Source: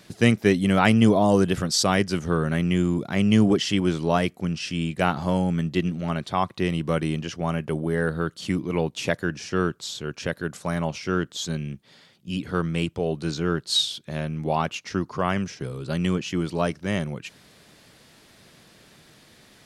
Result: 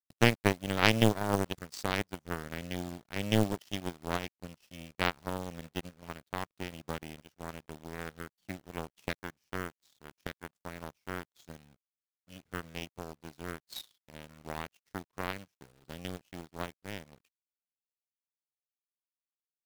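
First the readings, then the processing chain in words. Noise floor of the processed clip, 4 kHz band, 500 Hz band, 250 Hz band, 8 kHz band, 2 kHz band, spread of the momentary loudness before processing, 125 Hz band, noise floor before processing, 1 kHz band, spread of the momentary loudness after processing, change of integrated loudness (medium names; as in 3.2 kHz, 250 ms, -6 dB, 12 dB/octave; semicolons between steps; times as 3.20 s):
under -85 dBFS, -10.0 dB, -12.0 dB, -14.0 dB, -12.5 dB, -7.0 dB, 11 LU, -12.5 dB, -55 dBFS, -10.0 dB, 20 LU, -11.0 dB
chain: bass shelf 140 Hz +7.5 dB; in parallel at +2 dB: compression 12:1, threshold -26 dBFS, peak gain reduction 17 dB; on the sum: bit crusher 5-bit; power-law waveshaper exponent 3; trim -1 dB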